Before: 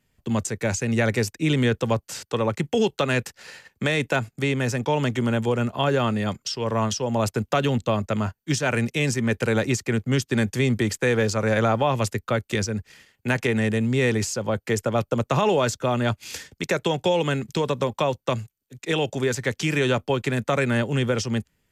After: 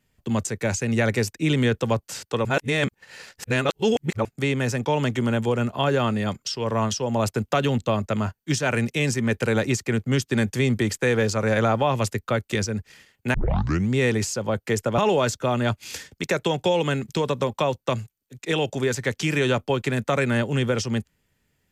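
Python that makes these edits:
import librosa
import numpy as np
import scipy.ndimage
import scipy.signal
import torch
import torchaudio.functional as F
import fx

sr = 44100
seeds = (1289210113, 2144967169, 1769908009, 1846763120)

y = fx.edit(x, sr, fx.reverse_span(start_s=2.45, length_s=1.8),
    fx.tape_start(start_s=13.34, length_s=0.56),
    fx.cut(start_s=14.98, length_s=0.4), tone=tone)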